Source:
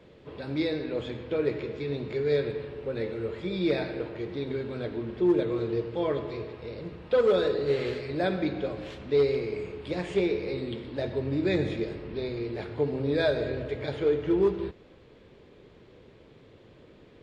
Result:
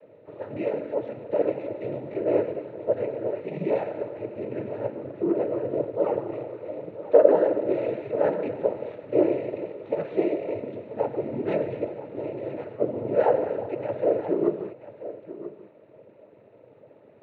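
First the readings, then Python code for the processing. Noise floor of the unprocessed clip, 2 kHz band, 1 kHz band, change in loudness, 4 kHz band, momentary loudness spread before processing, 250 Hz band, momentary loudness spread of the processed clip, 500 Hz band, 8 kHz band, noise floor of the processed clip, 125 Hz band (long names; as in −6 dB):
−54 dBFS, −6.0 dB, +6.0 dB, +2.5 dB, below −15 dB, 10 LU, 0.0 dB, 13 LU, +3.5 dB, can't be measured, −53 dBFS, −5.5 dB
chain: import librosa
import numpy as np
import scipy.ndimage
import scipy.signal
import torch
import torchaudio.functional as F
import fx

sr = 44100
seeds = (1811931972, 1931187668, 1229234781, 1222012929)

p1 = scipy.signal.sosfilt(scipy.signal.butter(8, 2600.0, 'lowpass', fs=sr, output='sos'), x)
p2 = fx.peak_eq(p1, sr, hz=530.0, db=14.0, octaves=0.6)
p3 = fx.noise_vocoder(p2, sr, seeds[0], bands=12)
p4 = p3 + fx.echo_single(p3, sr, ms=984, db=-14.0, dry=0)
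y = p4 * 10.0 ** (-5.0 / 20.0)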